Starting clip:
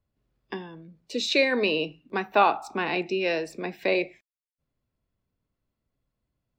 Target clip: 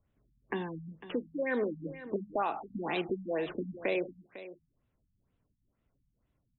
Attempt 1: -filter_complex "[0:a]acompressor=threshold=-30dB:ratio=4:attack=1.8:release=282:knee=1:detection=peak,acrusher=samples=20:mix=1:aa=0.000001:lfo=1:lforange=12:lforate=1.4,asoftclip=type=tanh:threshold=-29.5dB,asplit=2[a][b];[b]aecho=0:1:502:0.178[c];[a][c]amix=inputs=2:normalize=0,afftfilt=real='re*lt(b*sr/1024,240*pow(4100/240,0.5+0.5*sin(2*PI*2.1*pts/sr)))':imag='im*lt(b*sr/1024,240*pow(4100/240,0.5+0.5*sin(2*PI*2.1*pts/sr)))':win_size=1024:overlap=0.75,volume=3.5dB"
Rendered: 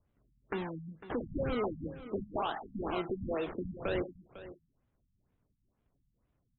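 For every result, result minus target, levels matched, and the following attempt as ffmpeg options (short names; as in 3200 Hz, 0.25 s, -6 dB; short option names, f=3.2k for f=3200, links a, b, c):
soft clip: distortion +18 dB; decimation with a swept rate: distortion +8 dB
-filter_complex "[0:a]acompressor=threshold=-30dB:ratio=4:attack=1.8:release=282:knee=1:detection=peak,acrusher=samples=20:mix=1:aa=0.000001:lfo=1:lforange=12:lforate=1.4,asoftclip=type=tanh:threshold=-18dB,asplit=2[a][b];[b]aecho=0:1:502:0.178[c];[a][c]amix=inputs=2:normalize=0,afftfilt=real='re*lt(b*sr/1024,240*pow(4100/240,0.5+0.5*sin(2*PI*2.1*pts/sr)))':imag='im*lt(b*sr/1024,240*pow(4100/240,0.5+0.5*sin(2*PI*2.1*pts/sr)))':win_size=1024:overlap=0.75,volume=3.5dB"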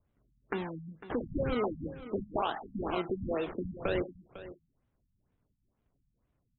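decimation with a swept rate: distortion +8 dB
-filter_complex "[0:a]acompressor=threshold=-30dB:ratio=4:attack=1.8:release=282:knee=1:detection=peak,acrusher=samples=6:mix=1:aa=0.000001:lfo=1:lforange=3.6:lforate=1.4,asoftclip=type=tanh:threshold=-18dB,asplit=2[a][b];[b]aecho=0:1:502:0.178[c];[a][c]amix=inputs=2:normalize=0,afftfilt=real='re*lt(b*sr/1024,240*pow(4100/240,0.5+0.5*sin(2*PI*2.1*pts/sr)))':imag='im*lt(b*sr/1024,240*pow(4100/240,0.5+0.5*sin(2*PI*2.1*pts/sr)))':win_size=1024:overlap=0.75,volume=3.5dB"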